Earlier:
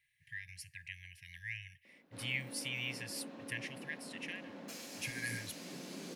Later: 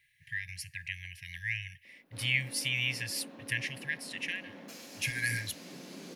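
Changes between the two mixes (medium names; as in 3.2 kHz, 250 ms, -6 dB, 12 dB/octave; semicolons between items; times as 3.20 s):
speech +8.5 dB; master: add peaking EQ 8.4 kHz -3.5 dB 0.45 oct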